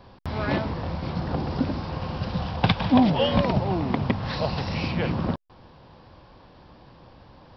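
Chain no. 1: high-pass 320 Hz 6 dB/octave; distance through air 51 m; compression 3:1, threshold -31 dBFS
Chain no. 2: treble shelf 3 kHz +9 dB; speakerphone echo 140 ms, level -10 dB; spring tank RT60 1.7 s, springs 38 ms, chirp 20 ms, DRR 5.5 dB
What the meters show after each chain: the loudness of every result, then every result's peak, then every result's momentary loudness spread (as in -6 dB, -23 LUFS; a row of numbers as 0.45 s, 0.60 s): -34.5 LUFS, -23.5 LUFS; -15.5 dBFS, -1.5 dBFS; 22 LU, 10 LU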